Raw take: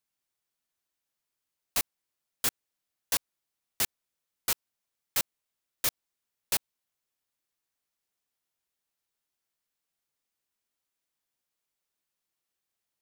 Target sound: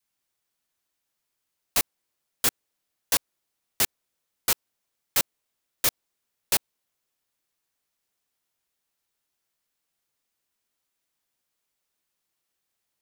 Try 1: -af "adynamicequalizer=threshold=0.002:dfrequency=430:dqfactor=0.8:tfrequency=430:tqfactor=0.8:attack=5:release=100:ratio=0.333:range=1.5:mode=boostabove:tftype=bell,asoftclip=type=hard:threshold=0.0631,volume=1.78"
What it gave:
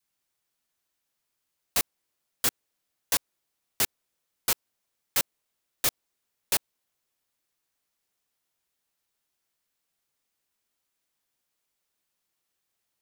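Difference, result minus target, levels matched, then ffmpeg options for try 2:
hard clipper: distortion +18 dB
-af "adynamicequalizer=threshold=0.002:dfrequency=430:dqfactor=0.8:tfrequency=430:tqfactor=0.8:attack=5:release=100:ratio=0.333:range=1.5:mode=boostabove:tftype=bell,asoftclip=type=hard:threshold=0.15,volume=1.78"

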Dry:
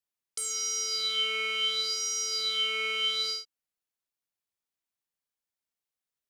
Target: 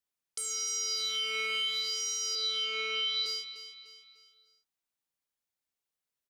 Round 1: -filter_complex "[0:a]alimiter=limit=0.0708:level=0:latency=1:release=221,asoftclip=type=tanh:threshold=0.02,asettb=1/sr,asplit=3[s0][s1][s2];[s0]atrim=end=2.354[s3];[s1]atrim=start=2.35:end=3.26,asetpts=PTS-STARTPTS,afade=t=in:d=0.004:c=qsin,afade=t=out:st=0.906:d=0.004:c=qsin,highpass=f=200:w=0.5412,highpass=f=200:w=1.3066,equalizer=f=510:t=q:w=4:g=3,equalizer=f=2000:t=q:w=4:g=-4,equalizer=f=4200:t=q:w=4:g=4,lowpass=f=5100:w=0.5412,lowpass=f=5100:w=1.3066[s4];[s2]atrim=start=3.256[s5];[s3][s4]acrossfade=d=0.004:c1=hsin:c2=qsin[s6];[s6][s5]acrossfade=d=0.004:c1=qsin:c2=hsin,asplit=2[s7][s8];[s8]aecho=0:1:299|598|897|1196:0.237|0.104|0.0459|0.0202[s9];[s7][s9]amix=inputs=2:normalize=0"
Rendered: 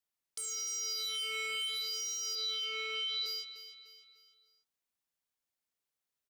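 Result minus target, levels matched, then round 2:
saturation: distortion +16 dB
-filter_complex "[0:a]alimiter=limit=0.0708:level=0:latency=1:release=221,asoftclip=type=tanh:threshold=0.0794,asettb=1/sr,asplit=3[s0][s1][s2];[s0]atrim=end=2.354[s3];[s1]atrim=start=2.35:end=3.26,asetpts=PTS-STARTPTS,afade=t=in:d=0.004:c=qsin,afade=t=out:st=0.906:d=0.004:c=qsin,highpass=f=200:w=0.5412,highpass=f=200:w=1.3066,equalizer=f=510:t=q:w=4:g=3,equalizer=f=2000:t=q:w=4:g=-4,equalizer=f=4200:t=q:w=4:g=4,lowpass=f=5100:w=0.5412,lowpass=f=5100:w=1.3066[s4];[s2]atrim=start=3.256[s5];[s3][s4]acrossfade=d=0.004:c1=hsin:c2=qsin[s6];[s6][s5]acrossfade=d=0.004:c1=qsin:c2=hsin,asplit=2[s7][s8];[s8]aecho=0:1:299|598|897|1196:0.237|0.104|0.0459|0.0202[s9];[s7][s9]amix=inputs=2:normalize=0"

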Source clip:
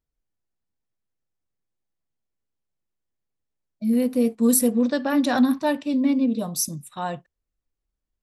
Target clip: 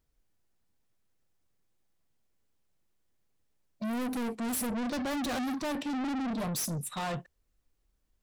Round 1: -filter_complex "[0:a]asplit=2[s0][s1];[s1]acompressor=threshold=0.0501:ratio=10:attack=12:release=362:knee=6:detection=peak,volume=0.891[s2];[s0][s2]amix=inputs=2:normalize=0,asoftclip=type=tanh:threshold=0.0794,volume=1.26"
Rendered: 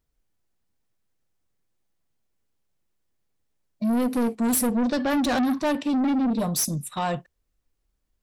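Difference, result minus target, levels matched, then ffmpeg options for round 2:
saturation: distortion -5 dB
-filter_complex "[0:a]asplit=2[s0][s1];[s1]acompressor=threshold=0.0501:ratio=10:attack=12:release=362:knee=6:detection=peak,volume=0.891[s2];[s0][s2]amix=inputs=2:normalize=0,asoftclip=type=tanh:threshold=0.0211,volume=1.26"

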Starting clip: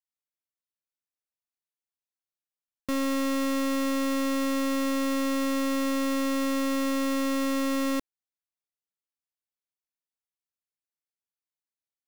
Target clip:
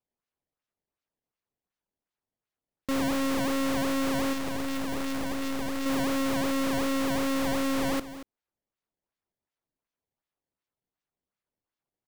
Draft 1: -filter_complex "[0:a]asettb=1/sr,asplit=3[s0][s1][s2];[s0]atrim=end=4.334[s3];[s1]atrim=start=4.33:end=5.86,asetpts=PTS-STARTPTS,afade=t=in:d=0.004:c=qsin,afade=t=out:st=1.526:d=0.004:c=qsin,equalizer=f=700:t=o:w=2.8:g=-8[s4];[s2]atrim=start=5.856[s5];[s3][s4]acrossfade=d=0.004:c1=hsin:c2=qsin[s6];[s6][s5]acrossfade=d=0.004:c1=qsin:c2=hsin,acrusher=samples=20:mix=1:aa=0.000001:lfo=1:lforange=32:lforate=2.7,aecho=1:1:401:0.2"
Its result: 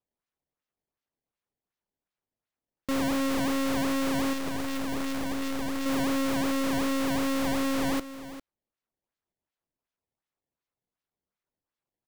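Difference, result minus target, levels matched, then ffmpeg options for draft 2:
echo 170 ms late
-filter_complex "[0:a]asettb=1/sr,asplit=3[s0][s1][s2];[s0]atrim=end=4.334[s3];[s1]atrim=start=4.33:end=5.86,asetpts=PTS-STARTPTS,afade=t=in:d=0.004:c=qsin,afade=t=out:st=1.526:d=0.004:c=qsin,equalizer=f=700:t=o:w=2.8:g=-8[s4];[s2]atrim=start=5.856[s5];[s3][s4]acrossfade=d=0.004:c1=hsin:c2=qsin[s6];[s6][s5]acrossfade=d=0.004:c1=qsin:c2=hsin,acrusher=samples=20:mix=1:aa=0.000001:lfo=1:lforange=32:lforate=2.7,aecho=1:1:231:0.2"

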